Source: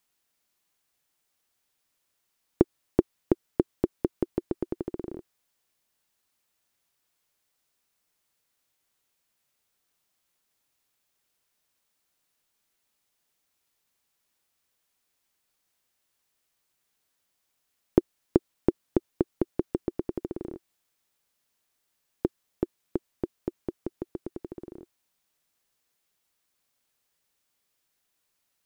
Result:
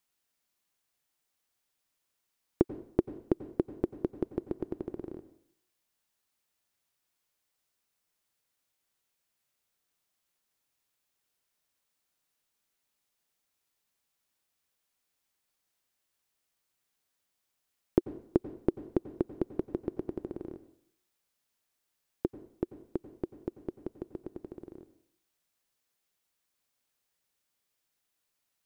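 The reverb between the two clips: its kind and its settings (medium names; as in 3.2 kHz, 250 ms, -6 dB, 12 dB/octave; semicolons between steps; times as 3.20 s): plate-style reverb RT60 0.62 s, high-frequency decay 0.95×, pre-delay 80 ms, DRR 13 dB; trim -4.5 dB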